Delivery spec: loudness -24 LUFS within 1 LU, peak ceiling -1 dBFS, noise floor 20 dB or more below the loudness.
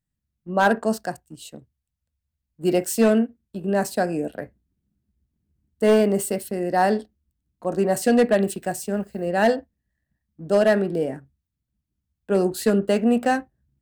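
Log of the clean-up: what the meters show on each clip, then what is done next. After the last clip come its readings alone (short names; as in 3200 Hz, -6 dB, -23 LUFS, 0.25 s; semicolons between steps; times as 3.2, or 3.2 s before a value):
clipped 0.6%; flat tops at -10.0 dBFS; loudness -22.0 LUFS; peak -10.0 dBFS; loudness target -24.0 LUFS
-> clip repair -10 dBFS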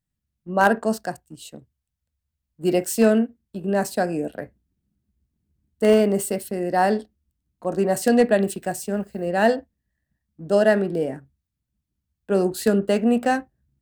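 clipped 0.0%; loudness -22.0 LUFS; peak -3.0 dBFS; loudness target -24.0 LUFS
-> gain -2 dB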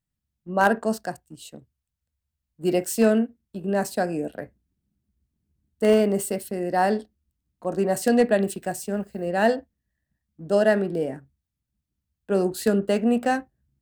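loudness -24.0 LUFS; peak -5.0 dBFS; noise floor -84 dBFS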